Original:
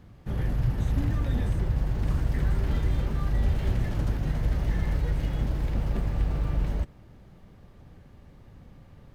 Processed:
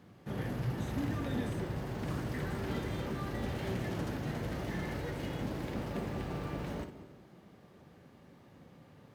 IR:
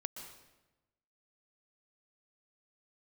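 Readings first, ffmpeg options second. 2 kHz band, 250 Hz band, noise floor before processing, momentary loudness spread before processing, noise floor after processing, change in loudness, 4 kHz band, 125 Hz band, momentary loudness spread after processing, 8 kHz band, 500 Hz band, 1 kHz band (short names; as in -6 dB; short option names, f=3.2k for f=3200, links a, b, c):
-1.0 dB, -2.5 dB, -52 dBFS, 2 LU, -59 dBFS, -9.0 dB, -1.0 dB, -10.5 dB, 7 LU, n/a, 0.0 dB, -1.0 dB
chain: -filter_complex "[0:a]highpass=170,asplit=2[a][b];[b]equalizer=f=370:t=o:w=0.77:g=7[c];[1:a]atrim=start_sample=2205,adelay=57[d];[c][d]afir=irnorm=-1:irlink=0,volume=-7.5dB[e];[a][e]amix=inputs=2:normalize=0,volume=-1.5dB"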